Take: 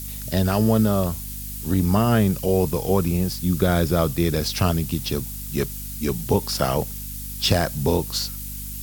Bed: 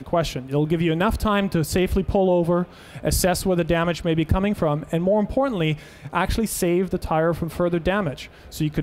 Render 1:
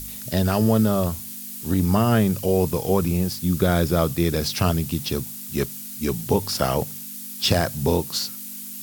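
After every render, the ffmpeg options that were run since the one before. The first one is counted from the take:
-af "bandreject=f=50:t=h:w=4,bandreject=f=100:t=h:w=4,bandreject=f=150:t=h:w=4"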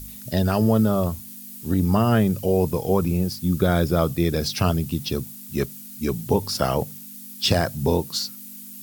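-af "afftdn=nr=7:nf=-36"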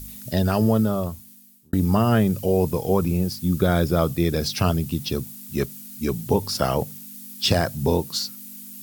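-filter_complex "[0:a]asplit=2[s0][s1];[s0]atrim=end=1.73,asetpts=PTS-STARTPTS,afade=t=out:st=0.65:d=1.08[s2];[s1]atrim=start=1.73,asetpts=PTS-STARTPTS,afade=t=in:d=0.004:c=hsin[s3];[s2][s3]concat=n=2:v=0:a=1"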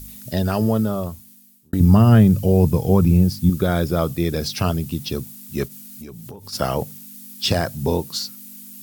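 -filter_complex "[0:a]asettb=1/sr,asplit=3[s0][s1][s2];[s0]atrim=end=1.804[s3];[s1]atrim=start=1.8:end=3.5,asetpts=PTS-STARTPTS,afade=t=in:d=0.004:c=qsin,afade=t=out:st=1.696:d=0.004:c=qsin,bass=f=250:g=10,treble=f=4000:g=0[s4];[s2]atrim=start=3.496[s5];[s3][s4]acrossfade=d=0.004:c1=hsin:c2=qsin[s6];[s6][s5]acrossfade=d=0.004:c1=qsin:c2=hsin,asplit=3[s7][s8][s9];[s7]afade=t=out:st=5.67:d=0.02[s10];[s8]acompressor=threshold=0.0224:ratio=10:attack=3.2:release=140:knee=1:detection=peak,afade=t=in:st=5.67:d=0.02,afade=t=out:st=6.52:d=0.02[s11];[s9]afade=t=in:st=6.52:d=0.02[s12];[s10][s11][s12]amix=inputs=3:normalize=0"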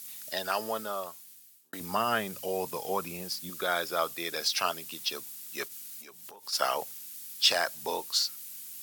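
-af "highpass=930,highshelf=f=12000:g=-5.5"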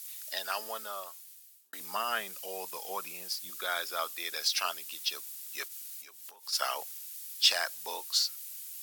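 -af "highpass=f=1400:p=1"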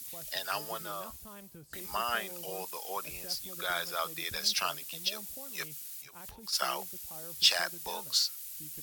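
-filter_complex "[1:a]volume=0.0299[s0];[0:a][s0]amix=inputs=2:normalize=0"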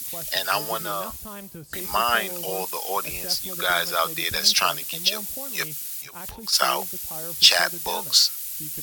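-af "volume=3.55,alimiter=limit=0.891:level=0:latency=1"

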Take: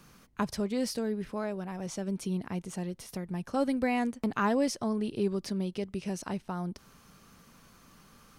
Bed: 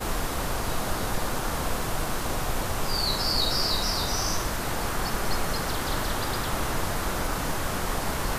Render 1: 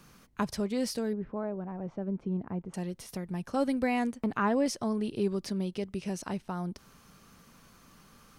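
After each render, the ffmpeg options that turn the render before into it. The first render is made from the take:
-filter_complex "[0:a]asettb=1/sr,asplit=3[s0][s1][s2];[s0]atrim=end=1.134[s3];[s1]atrim=start=1.13:end=2.74,asetpts=PTS-STARTPTS,afade=t=in:d=0.004:c=qsin,afade=t=out:st=1.606:d=0.004:c=qsin,lowpass=1100[s4];[s2]atrim=start=2.736[s5];[s3][s4]acrossfade=d=0.004:c1=hsin:c2=qsin[s6];[s6][s5]acrossfade=d=0.004:c1=qsin:c2=hsin,asettb=1/sr,asplit=3[s7][s8][s9];[s7]atrim=end=4.184[s10];[s8]atrim=start=4.18:end=4.66,asetpts=PTS-STARTPTS,afade=t=in:d=0.004:c=qsin,afade=t=out:st=0.476:d=0.004:c=qsin,acrossover=split=2900[s11][s12];[s12]acompressor=threshold=0.00126:ratio=4:attack=1:release=60[s13];[s11][s13]amix=inputs=2:normalize=0[s14];[s9]atrim=start=4.656[s15];[s10][s14]acrossfade=d=0.004:c1=hsin:c2=qsin[s16];[s16][s15]acrossfade=d=0.004:c1=qsin:c2=hsin"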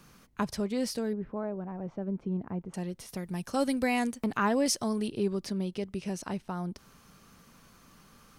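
-filter_complex "[0:a]asettb=1/sr,asplit=3[s0][s1][s2];[s0]atrim=end=3.174[s3];[s1]atrim=start=3.17:end=5.08,asetpts=PTS-STARTPTS,afade=t=in:d=0.004:c=qsin,afade=t=out:st=1.906:d=0.004:c=qsin,highshelf=f=3500:g=11[s4];[s2]atrim=start=5.076[s5];[s3][s4]acrossfade=d=0.004:c1=hsin:c2=qsin[s6];[s6][s5]acrossfade=d=0.004:c1=qsin:c2=hsin"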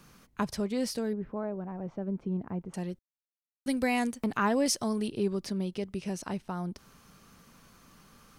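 -filter_complex "[0:a]asplit=3[s0][s1][s2];[s0]atrim=end=2.99,asetpts=PTS-STARTPTS,afade=t=out:st=2.986:d=0.004:c=hsin[s3];[s1]atrim=start=2.99:end=3.66,asetpts=PTS-STARTPTS,volume=0[s4];[s2]atrim=start=3.66,asetpts=PTS-STARTPTS,afade=t=in:d=0.004:c=hsin[s5];[s3][s4][s5]concat=n=3:v=0:a=1"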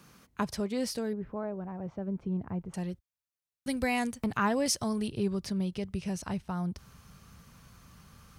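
-af "highpass=64,asubboost=boost=6.5:cutoff=110"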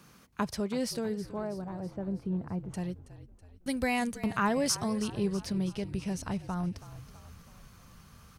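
-filter_complex "[0:a]asplit=7[s0][s1][s2][s3][s4][s5][s6];[s1]adelay=325,afreqshift=-48,volume=0.168[s7];[s2]adelay=650,afreqshift=-96,volume=0.0955[s8];[s3]adelay=975,afreqshift=-144,volume=0.0543[s9];[s4]adelay=1300,afreqshift=-192,volume=0.0313[s10];[s5]adelay=1625,afreqshift=-240,volume=0.0178[s11];[s6]adelay=1950,afreqshift=-288,volume=0.0101[s12];[s0][s7][s8][s9][s10][s11][s12]amix=inputs=7:normalize=0"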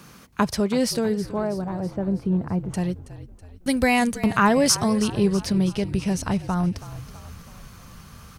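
-af "volume=3.16"

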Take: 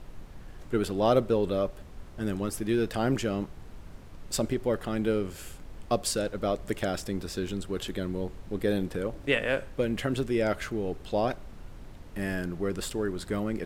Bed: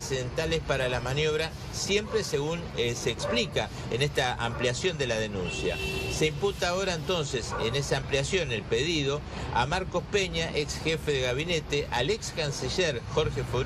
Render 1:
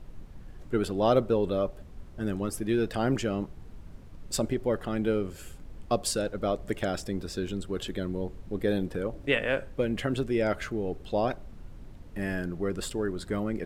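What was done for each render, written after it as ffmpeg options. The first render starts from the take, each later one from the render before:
-af "afftdn=nr=6:nf=-47"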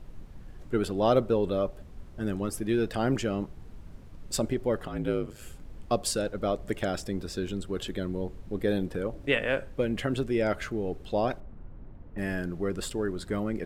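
-filter_complex "[0:a]asettb=1/sr,asplit=3[s0][s1][s2];[s0]atrim=end=4.874[s3];[s1]atrim=start=4.87:end=5.42,asetpts=PTS-STARTPTS,afade=t=in:d=0.004:c=qsin,afade=t=out:st=0.546:d=0.004:c=qsin,aeval=exprs='val(0)*sin(2*PI*53*n/s)':c=same[s4];[s2]atrim=start=5.416[s5];[s3][s4]acrossfade=d=0.004:c1=hsin:c2=qsin[s6];[s6][s5]acrossfade=d=0.004:c1=qsin:c2=hsin,asettb=1/sr,asplit=3[s7][s8][s9];[s7]atrim=end=11.404[s10];[s8]atrim=start=11.4:end=12.18,asetpts=PTS-STARTPTS,afade=t=in:d=0.004:c=qsin,afade=t=out:st=0.776:d=0.004:c=qsin,lowpass=1500[s11];[s9]atrim=start=12.176[s12];[s10][s11]acrossfade=d=0.004:c1=hsin:c2=qsin[s13];[s13][s12]acrossfade=d=0.004:c1=qsin:c2=hsin"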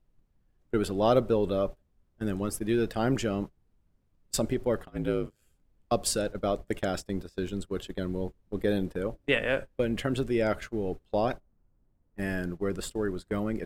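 -af "highshelf=f=10000:g=4.5,agate=range=0.0631:threshold=0.0224:ratio=16:detection=peak"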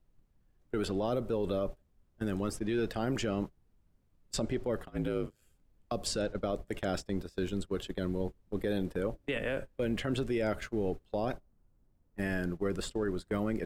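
-filter_complex "[0:a]acrossover=split=470|7500[s0][s1][s2];[s0]acompressor=threshold=0.0398:ratio=4[s3];[s1]acompressor=threshold=0.0282:ratio=4[s4];[s2]acompressor=threshold=0.00126:ratio=4[s5];[s3][s4][s5]amix=inputs=3:normalize=0,alimiter=limit=0.0708:level=0:latency=1:release=22"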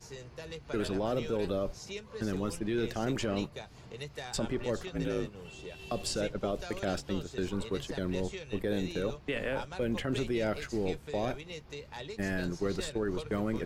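-filter_complex "[1:a]volume=0.168[s0];[0:a][s0]amix=inputs=2:normalize=0"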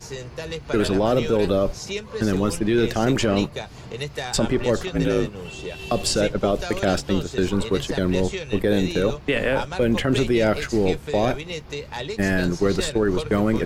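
-af "volume=3.98"

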